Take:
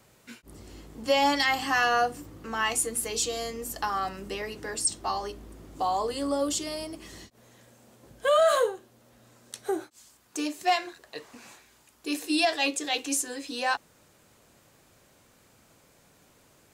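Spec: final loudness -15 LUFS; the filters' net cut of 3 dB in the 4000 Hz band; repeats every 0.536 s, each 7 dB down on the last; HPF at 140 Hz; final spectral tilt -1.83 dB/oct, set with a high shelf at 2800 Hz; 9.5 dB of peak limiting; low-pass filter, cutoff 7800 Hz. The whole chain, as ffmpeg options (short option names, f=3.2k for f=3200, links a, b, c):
-af "highpass=140,lowpass=7.8k,highshelf=f=2.8k:g=5,equalizer=f=4k:t=o:g=-8,alimiter=limit=-21dB:level=0:latency=1,aecho=1:1:536|1072|1608|2144|2680:0.447|0.201|0.0905|0.0407|0.0183,volume=16.5dB"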